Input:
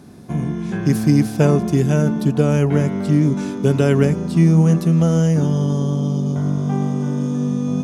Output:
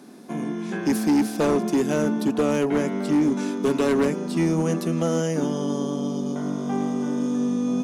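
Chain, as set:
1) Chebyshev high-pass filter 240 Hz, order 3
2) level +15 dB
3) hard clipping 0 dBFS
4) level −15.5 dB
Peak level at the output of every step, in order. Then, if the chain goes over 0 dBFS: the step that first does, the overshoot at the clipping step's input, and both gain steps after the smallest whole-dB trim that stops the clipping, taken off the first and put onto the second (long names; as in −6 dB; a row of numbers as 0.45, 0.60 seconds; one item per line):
−6.0, +9.0, 0.0, −15.5 dBFS
step 2, 9.0 dB
step 2 +6 dB, step 4 −6.5 dB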